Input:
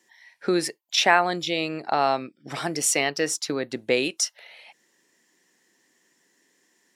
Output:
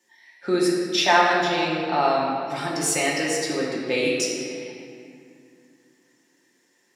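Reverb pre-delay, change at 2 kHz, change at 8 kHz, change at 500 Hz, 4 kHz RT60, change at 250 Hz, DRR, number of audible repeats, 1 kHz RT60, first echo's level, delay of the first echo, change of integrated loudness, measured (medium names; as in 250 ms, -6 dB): 3 ms, +1.5 dB, -1.0 dB, +3.0 dB, 1.5 s, +4.0 dB, -5.5 dB, no echo, 2.3 s, no echo, no echo, +2.0 dB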